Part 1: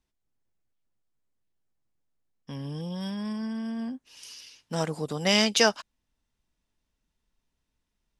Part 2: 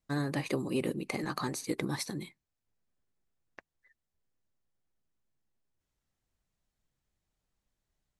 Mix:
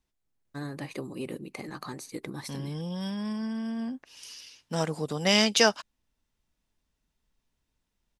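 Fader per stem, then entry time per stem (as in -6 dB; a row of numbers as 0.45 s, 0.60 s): 0.0 dB, -4.5 dB; 0.00 s, 0.45 s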